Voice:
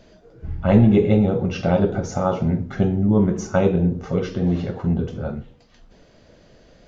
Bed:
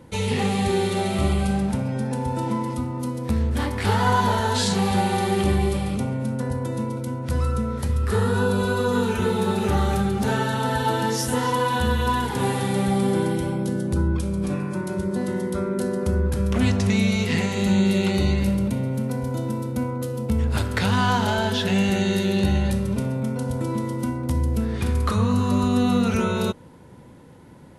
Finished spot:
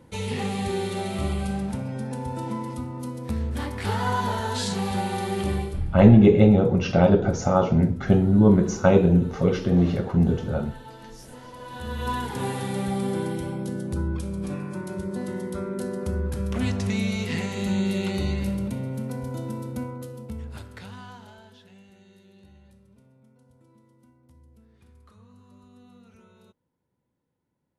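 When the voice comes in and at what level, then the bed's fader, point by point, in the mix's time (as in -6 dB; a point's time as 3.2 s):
5.30 s, +1.0 dB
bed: 5.59 s -5.5 dB
5.86 s -21.5 dB
11.54 s -21.5 dB
12.09 s -5.5 dB
19.75 s -5.5 dB
21.86 s -32.5 dB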